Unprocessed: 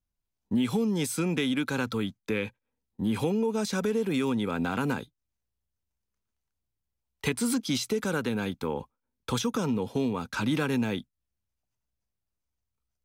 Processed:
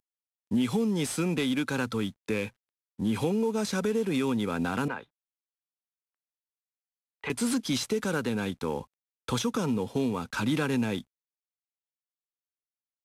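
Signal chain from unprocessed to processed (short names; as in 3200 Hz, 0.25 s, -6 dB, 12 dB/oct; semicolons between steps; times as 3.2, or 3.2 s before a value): CVSD 64 kbps; 4.88–7.3 three-band isolator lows -14 dB, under 500 Hz, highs -23 dB, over 2900 Hz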